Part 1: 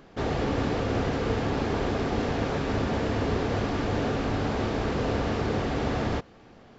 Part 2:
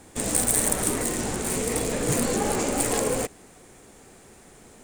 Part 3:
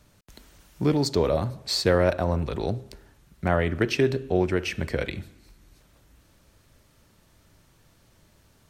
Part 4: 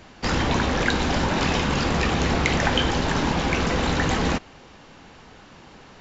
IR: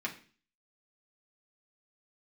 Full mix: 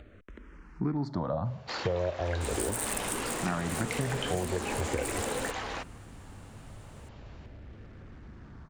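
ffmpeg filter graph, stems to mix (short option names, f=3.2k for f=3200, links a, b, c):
-filter_complex "[0:a]acompressor=threshold=-35dB:ratio=6,asubboost=boost=6.5:cutoff=170,asoftclip=type=tanh:threshold=-28dB,adelay=2450,volume=-16.5dB[a];[1:a]adelay=2250,volume=-8.5dB[b];[2:a]lowpass=1.7k,acompressor=mode=upward:threshold=-40dB:ratio=2.5,asplit=2[c][d];[d]afreqshift=-0.39[e];[c][e]amix=inputs=2:normalize=1,volume=1dB[f];[3:a]highpass=550,highshelf=f=4.9k:g=-5.5,adelay=1450,volume=-9.5dB[g];[a][b][f][g]amix=inputs=4:normalize=0,acompressor=threshold=-27dB:ratio=6"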